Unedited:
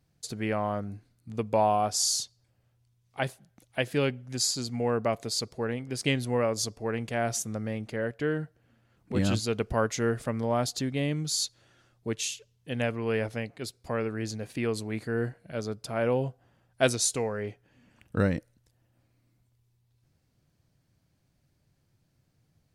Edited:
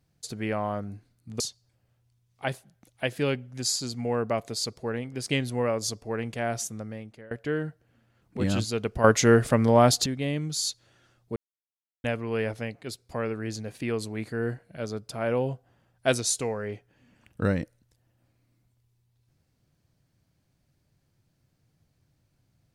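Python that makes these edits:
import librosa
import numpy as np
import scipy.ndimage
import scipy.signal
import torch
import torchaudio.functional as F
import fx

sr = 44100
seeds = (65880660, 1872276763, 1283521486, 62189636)

y = fx.edit(x, sr, fx.cut(start_s=1.4, length_s=0.75),
    fx.fade_out_to(start_s=6.97, length_s=1.09, curve='qsin', floor_db=-21.5),
    fx.clip_gain(start_s=9.79, length_s=1.02, db=9.0),
    fx.silence(start_s=12.11, length_s=0.68), tone=tone)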